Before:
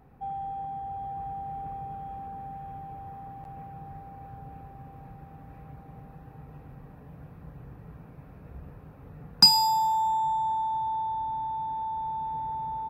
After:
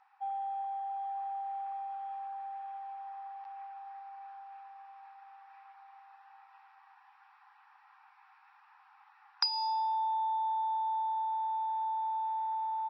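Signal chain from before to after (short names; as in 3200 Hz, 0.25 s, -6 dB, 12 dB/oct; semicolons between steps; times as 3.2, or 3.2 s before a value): compressor 4:1, threshold -31 dBFS, peak gain reduction 16 dB; brick-wall FIR band-pass 760–5800 Hz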